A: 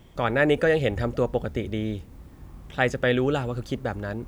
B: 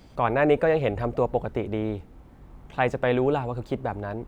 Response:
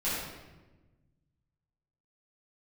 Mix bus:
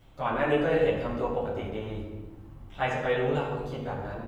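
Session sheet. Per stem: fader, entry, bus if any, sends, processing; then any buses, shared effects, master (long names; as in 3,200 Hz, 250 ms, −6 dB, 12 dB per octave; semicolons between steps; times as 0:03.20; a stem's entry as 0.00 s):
−4.0 dB, 0.00 s, send −12 dB, barber-pole flanger 8.1 ms +2.6 Hz; automatic ducking −9 dB, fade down 0.25 s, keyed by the second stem
−7.5 dB, 21 ms, send −5 dB, Chebyshev low-pass with heavy ripple 4,100 Hz, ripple 6 dB; tilt shelving filter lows −3 dB, about 1,300 Hz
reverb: on, RT60 1.2 s, pre-delay 6 ms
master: no processing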